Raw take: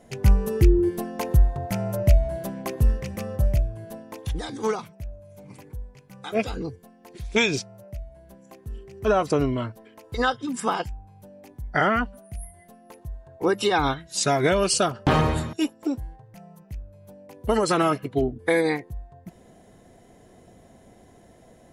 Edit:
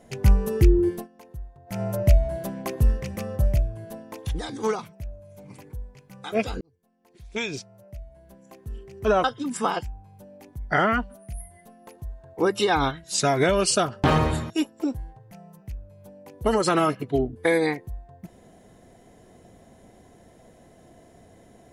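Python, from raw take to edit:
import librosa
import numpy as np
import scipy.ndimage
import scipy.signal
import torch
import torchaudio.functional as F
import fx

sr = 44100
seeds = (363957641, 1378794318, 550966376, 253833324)

y = fx.edit(x, sr, fx.fade_down_up(start_s=0.92, length_s=0.9, db=-20.5, fade_s=0.16),
    fx.fade_in_span(start_s=6.61, length_s=2.1),
    fx.cut(start_s=9.24, length_s=1.03), tone=tone)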